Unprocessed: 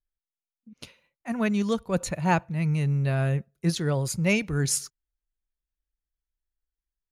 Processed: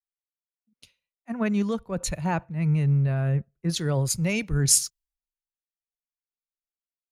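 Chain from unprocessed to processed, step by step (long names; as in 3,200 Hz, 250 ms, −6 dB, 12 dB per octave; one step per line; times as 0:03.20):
low-shelf EQ 69 Hz +10.5 dB
brickwall limiter −16.5 dBFS, peak gain reduction 7 dB
multiband upward and downward expander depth 100%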